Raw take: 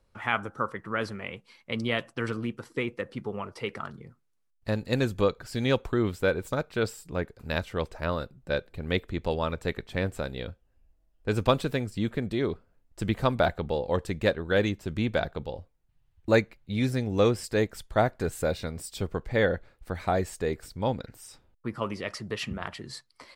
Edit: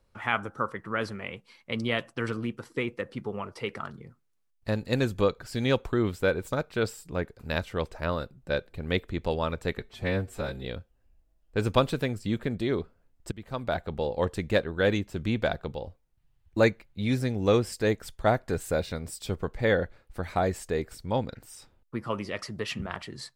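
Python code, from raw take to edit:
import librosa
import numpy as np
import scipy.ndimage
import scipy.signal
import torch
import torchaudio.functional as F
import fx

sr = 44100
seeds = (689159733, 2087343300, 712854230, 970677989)

y = fx.edit(x, sr, fx.stretch_span(start_s=9.79, length_s=0.57, factor=1.5),
    fx.fade_in_from(start_s=13.03, length_s=0.79, floor_db=-23.0), tone=tone)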